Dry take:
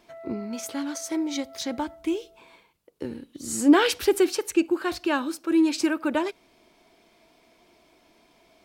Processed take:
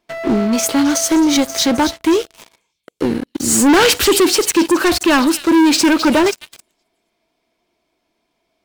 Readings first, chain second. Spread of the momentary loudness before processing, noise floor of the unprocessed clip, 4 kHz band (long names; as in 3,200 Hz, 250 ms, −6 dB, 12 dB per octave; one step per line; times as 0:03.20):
15 LU, −62 dBFS, +15.0 dB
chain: echo through a band-pass that steps 264 ms, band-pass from 4,000 Hz, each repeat 0.7 octaves, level −8 dB
leveller curve on the samples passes 5